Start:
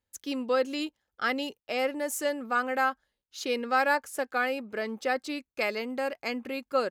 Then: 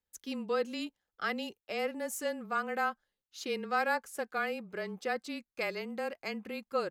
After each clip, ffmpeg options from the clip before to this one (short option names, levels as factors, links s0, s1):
-af "afreqshift=-24,volume=0.531"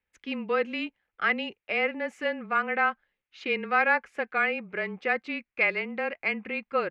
-af "lowpass=f=2300:t=q:w=3.3,volume=1.58"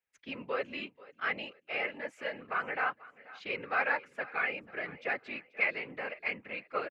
-af "aecho=1:1:486|972|1458:0.1|0.036|0.013,afftfilt=real='hypot(re,im)*cos(2*PI*random(0))':imag='hypot(re,im)*sin(2*PI*random(1))':win_size=512:overlap=0.75,lowshelf=f=270:g=-10.5"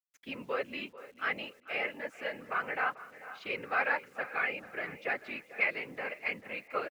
-filter_complex "[0:a]acrusher=bits=10:mix=0:aa=0.000001,asplit=2[s0][s1];[s1]adelay=441,lowpass=f=2800:p=1,volume=0.158,asplit=2[s2][s3];[s3]adelay=441,lowpass=f=2800:p=1,volume=0.3,asplit=2[s4][s5];[s5]adelay=441,lowpass=f=2800:p=1,volume=0.3[s6];[s0][s2][s4][s6]amix=inputs=4:normalize=0"